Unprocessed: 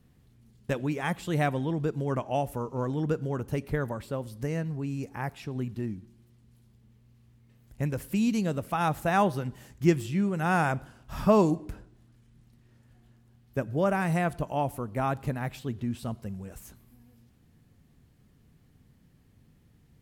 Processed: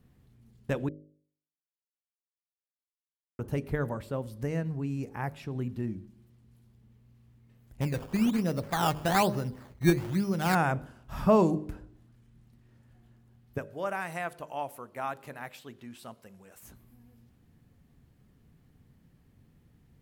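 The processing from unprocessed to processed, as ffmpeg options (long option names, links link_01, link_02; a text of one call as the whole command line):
ffmpeg -i in.wav -filter_complex "[0:a]asettb=1/sr,asplit=3[link_01][link_02][link_03];[link_01]atrim=end=7.814[link_04];[link_02]atrim=start=7.81:end=10.55,asetpts=PTS-STARTPTS,afade=type=in:duration=0.004:curve=qsin,afade=type=out:start_time=2.736:duration=0.004:curve=qsin,acrusher=samples=15:mix=1:aa=0.000001:lfo=1:lforange=15:lforate=1.1[link_05];[link_03]atrim=start=10.546[link_06];[link_04][link_05]acrossfade=duration=0.004:curve1=hsin:curve2=qsin[link_07];[link_07][link_06]acrossfade=duration=0.004:curve1=qsin:curve2=hsin,asettb=1/sr,asplit=3[link_08][link_09][link_10];[link_08]atrim=end=13.584[link_11];[link_09]atrim=start=13.58:end=16.63,asetpts=PTS-STARTPTS,afade=type=in:duration=0.004:curve=qsin,afade=type=out:start_time=3.046:duration=0.004:curve=qsin,highpass=frequency=1100:poles=1[link_12];[link_10]atrim=start=16.626[link_13];[link_11][link_12]acrossfade=duration=0.004:curve1=hsin:curve2=qsin[link_14];[link_14][link_13]acrossfade=duration=0.004:curve1=qsin:curve2=hsin,asplit=3[link_15][link_16][link_17];[link_15]atrim=end=0.89,asetpts=PTS-STARTPTS,afade=type=out:start_time=0.886:duration=0.004:curve=hsin[link_18];[link_16]atrim=start=0.89:end=3.39,asetpts=PTS-STARTPTS,volume=0[link_19];[link_17]atrim=start=3.39,asetpts=PTS-STARTPTS,afade=type=in:duration=0.004:curve=hsin[link_20];[link_18][link_19][link_20]concat=n=3:v=0:a=1,equalizer=frequency=6700:width_type=o:width=2.7:gain=-4.5,bandreject=frequency=50.83:width_type=h:width=4,bandreject=frequency=101.66:width_type=h:width=4,bandreject=frequency=152.49:width_type=h:width=4,bandreject=frequency=203.32:width_type=h:width=4,bandreject=frequency=254.15:width_type=h:width=4,bandreject=frequency=304.98:width_type=h:width=4,bandreject=frequency=355.81:width_type=h:width=4,bandreject=frequency=406.64:width_type=h:width=4,bandreject=frequency=457.47:width_type=h:width=4,bandreject=frequency=508.3:width_type=h:width=4,bandreject=frequency=559.13:width_type=h:width=4,bandreject=frequency=609.96:width_type=h:width=4" out.wav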